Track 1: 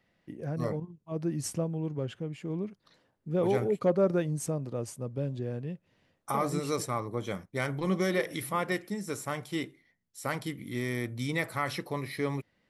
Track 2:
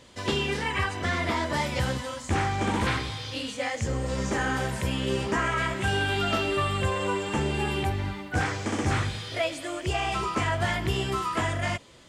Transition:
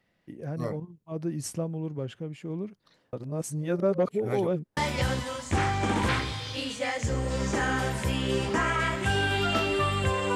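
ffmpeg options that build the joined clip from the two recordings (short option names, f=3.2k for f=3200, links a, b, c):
-filter_complex "[0:a]apad=whole_dur=10.35,atrim=end=10.35,asplit=2[a][b];[a]atrim=end=3.132[c];[b]atrim=start=3.128:end=4.772,asetpts=PTS-STARTPTS,areverse[d];[1:a]atrim=start=1.548:end=7.13[e];[c][d]acrossfade=d=0.004:c1=hsin:c2=hsin[f];[f][e]acrossfade=d=0.004:c1=hsin:c2=hsin"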